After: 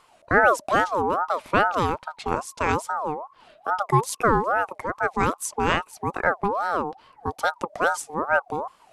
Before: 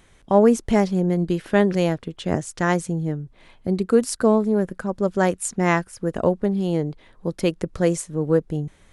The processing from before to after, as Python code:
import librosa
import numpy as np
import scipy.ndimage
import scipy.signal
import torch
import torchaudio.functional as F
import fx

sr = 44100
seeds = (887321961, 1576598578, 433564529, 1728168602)

y = fx.ring_lfo(x, sr, carrier_hz=850.0, swing_pct=30, hz=2.4)